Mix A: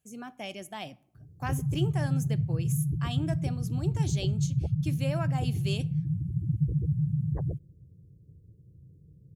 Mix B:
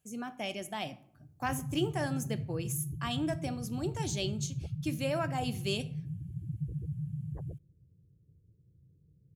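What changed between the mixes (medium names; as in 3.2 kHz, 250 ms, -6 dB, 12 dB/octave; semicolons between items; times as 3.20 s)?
speech: send +8.0 dB; background -9.5 dB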